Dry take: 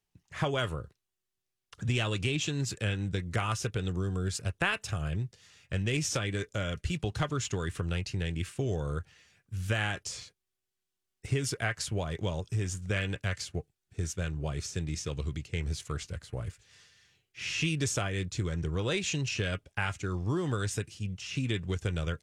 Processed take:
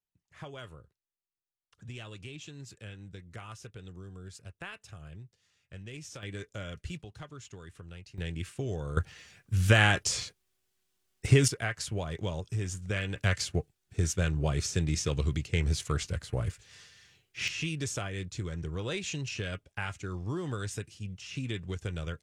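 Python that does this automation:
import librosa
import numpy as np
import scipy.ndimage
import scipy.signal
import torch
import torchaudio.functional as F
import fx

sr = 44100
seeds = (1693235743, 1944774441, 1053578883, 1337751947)

y = fx.gain(x, sr, db=fx.steps((0.0, -14.0), (6.23, -7.0), (7.02, -14.5), (8.18, -3.0), (8.97, 8.5), (11.48, -1.5), (13.17, 5.0), (17.48, -4.0)))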